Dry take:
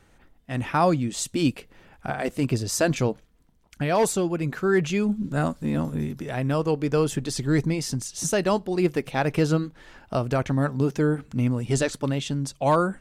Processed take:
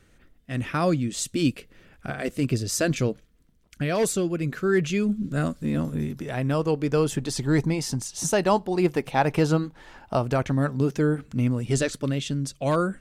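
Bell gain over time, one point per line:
bell 860 Hz 0.58 oct
5.52 s -11.5 dB
6.22 s -1.5 dB
7.02 s -1.5 dB
7.42 s +6 dB
10.16 s +6 dB
10.58 s -4 dB
11.59 s -4 dB
12.13 s -11 dB

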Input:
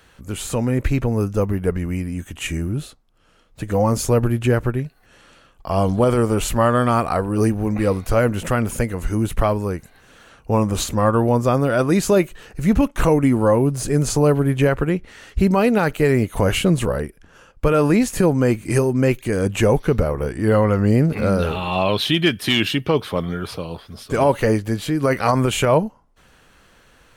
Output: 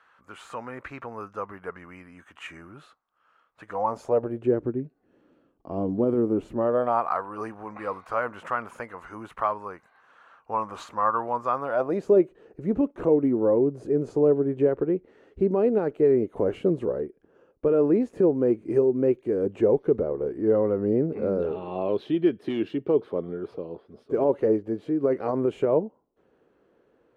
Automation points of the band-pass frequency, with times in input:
band-pass, Q 2.4
3.67 s 1200 Hz
4.65 s 310 Hz
6.52 s 310 Hz
7.11 s 1100 Hz
11.6 s 1100 Hz
12.12 s 390 Hz

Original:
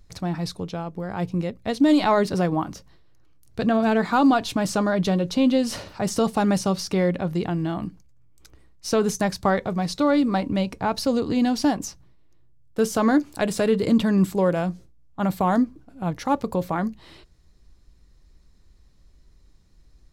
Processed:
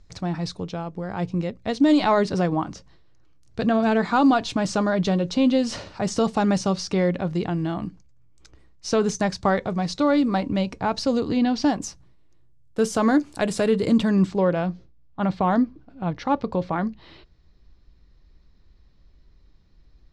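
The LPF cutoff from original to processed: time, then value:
LPF 24 dB/oct
11.27 s 7600 Hz
11.45 s 4300 Hz
11.87 s 10000 Hz
13.97 s 10000 Hz
14.42 s 4900 Hz

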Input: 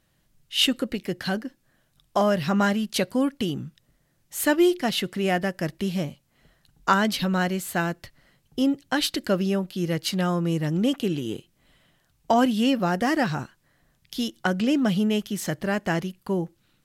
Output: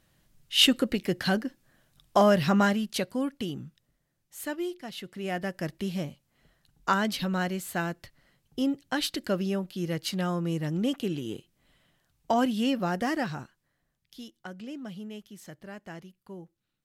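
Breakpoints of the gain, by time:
2.43 s +1 dB
3.09 s -6.5 dB
3.64 s -6.5 dB
4.87 s -15.5 dB
5.54 s -5 dB
13.03 s -5 dB
14.36 s -17.5 dB

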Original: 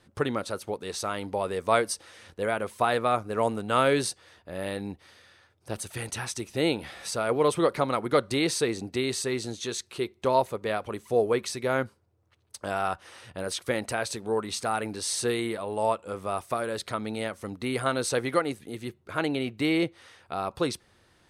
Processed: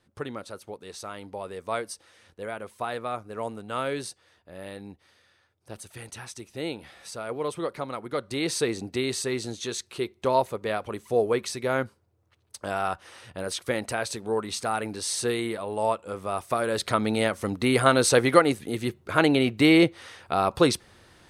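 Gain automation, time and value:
8.17 s -7 dB
8.58 s +0.5 dB
16.31 s +0.5 dB
16.96 s +7.5 dB

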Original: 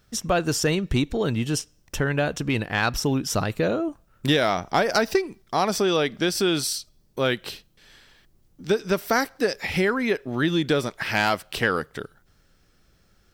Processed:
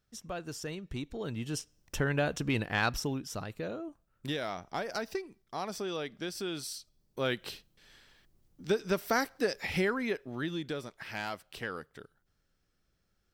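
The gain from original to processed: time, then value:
0.86 s -17 dB
2 s -6 dB
2.86 s -6 dB
3.29 s -14.5 dB
6.58 s -14.5 dB
7.43 s -7 dB
9.81 s -7 dB
10.79 s -15.5 dB

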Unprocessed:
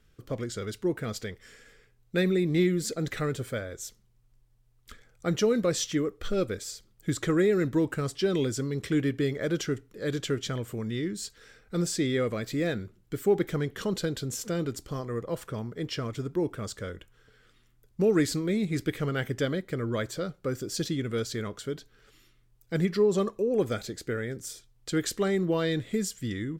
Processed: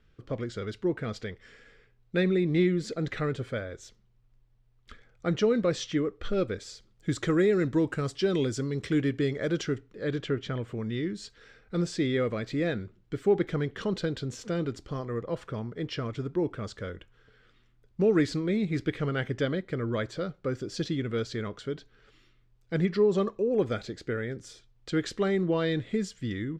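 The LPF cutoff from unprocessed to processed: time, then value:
6.36 s 3900 Hz
7.2 s 6400 Hz
9.46 s 6400 Hz
10.38 s 2500 Hz
10.91 s 4200 Hz

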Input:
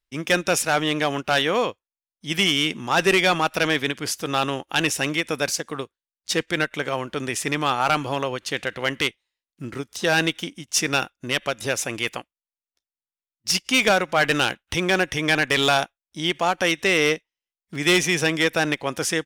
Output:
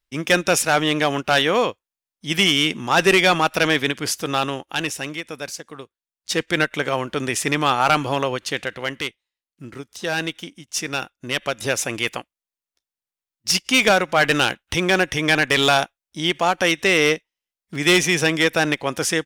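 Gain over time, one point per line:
4.17 s +3 dB
5.28 s -7 dB
5.79 s -7 dB
6.55 s +3.5 dB
8.37 s +3.5 dB
9.05 s -4 dB
10.91 s -4 dB
11.64 s +2.5 dB

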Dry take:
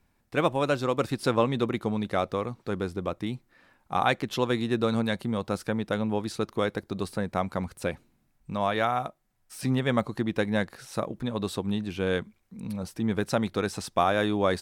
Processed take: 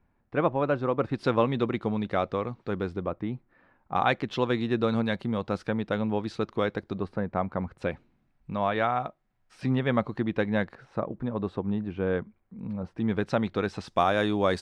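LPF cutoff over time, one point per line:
1700 Hz
from 1.14 s 3500 Hz
from 3.03 s 1700 Hz
from 3.96 s 3800 Hz
from 6.98 s 1700 Hz
from 7.78 s 3000 Hz
from 10.75 s 1500 Hz
from 12.98 s 3400 Hz
from 13.88 s 7400 Hz

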